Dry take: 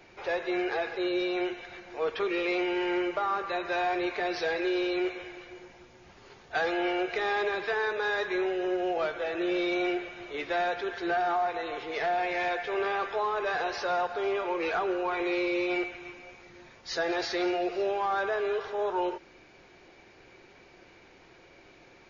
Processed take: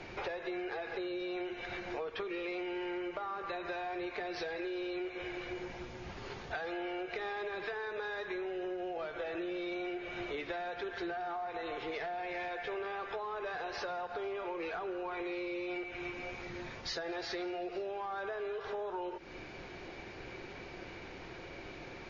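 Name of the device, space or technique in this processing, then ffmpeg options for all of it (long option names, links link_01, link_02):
serial compression, leveller first: -af "lowpass=5800,acompressor=threshold=-33dB:ratio=2.5,acompressor=threshold=-45dB:ratio=6,lowshelf=frequency=180:gain=5.5,volume=7dB"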